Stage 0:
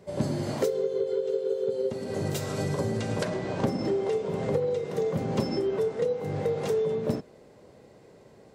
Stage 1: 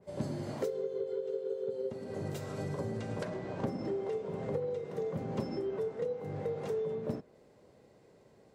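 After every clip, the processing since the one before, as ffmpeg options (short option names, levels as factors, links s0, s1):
-af "adynamicequalizer=threshold=0.00282:dfrequency=2500:dqfactor=0.7:tfrequency=2500:tqfactor=0.7:attack=5:release=100:ratio=0.375:range=3:mode=cutabove:tftype=highshelf,volume=0.398"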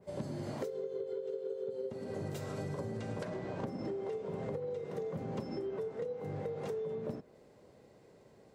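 -af "acompressor=threshold=0.0158:ratio=6,volume=1.12"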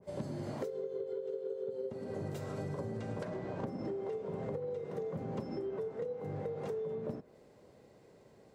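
-af "adynamicequalizer=threshold=0.00178:dfrequency=1900:dqfactor=0.7:tfrequency=1900:tqfactor=0.7:attack=5:release=100:ratio=0.375:range=2:mode=cutabove:tftype=highshelf"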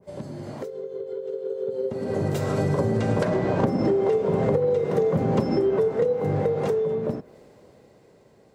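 -af "dynaudnorm=f=230:g=17:m=4.47,volume=1.58"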